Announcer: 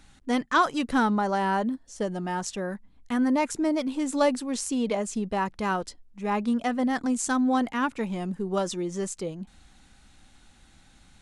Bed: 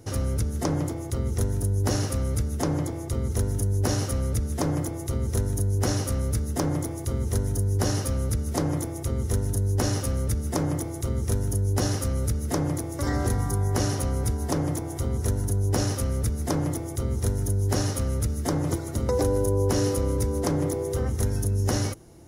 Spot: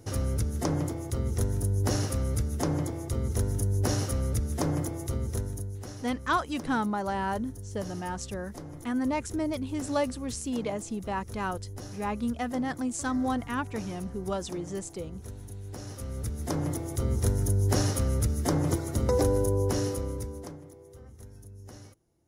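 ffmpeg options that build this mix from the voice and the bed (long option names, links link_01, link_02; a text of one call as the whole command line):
ffmpeg -i stem1.wav -i stem2.wav -filter_complex "[0:a]adelay=5750,volume=-5dB[link_01];[1:a]volume=13.5dB,afade=type=out:start_time=5.03:duration=0.8:silence=0.199526,afade=type=in:start_time=15.82:duration=1.28:silence=0.158489,afade=type=out:start_time=19.17:duration=1.44:silence=0.0794328[link_02];[link_01][link_02]amix=inputs=2:normalize=0" out.wav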